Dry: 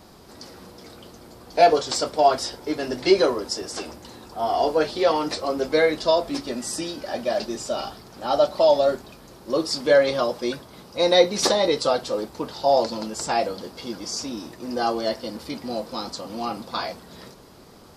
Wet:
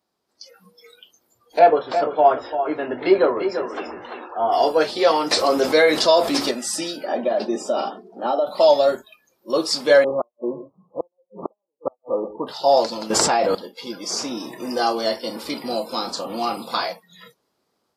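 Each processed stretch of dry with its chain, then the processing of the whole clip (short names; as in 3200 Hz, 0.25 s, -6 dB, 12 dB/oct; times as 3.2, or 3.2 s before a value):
1.59–4.52 LPF 1800 Hz + echo 0.342 s -9 dB + mismatched tape noise reduction encoder only
5.31–6.51 low shelf 170 Hz -3 dB + fast leveller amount 50%
7.05–8.47 compressor 10:1, threshold -23 dBFS + HPF 180 Hz 24 dB/oct + tilt shelf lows +6.5 dB, about 1300 Hz
10.04–12.47 steep low-pass 1200 Hz 96 dB/oct + echo 0.119 s -13 dB + flipped gate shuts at -14 dBFS, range -40 dB
13.1–13.55 high shelf 4100 Hz -10.5 dB + fast leveller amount 100%
14.1–16.76 doubler 31 ms -11 dB + three-band squash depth 40%
whole clip: spectral noise reduction 26 dB; HPF 350 Hz 6 dB/oct; AGC gain up to 5 dB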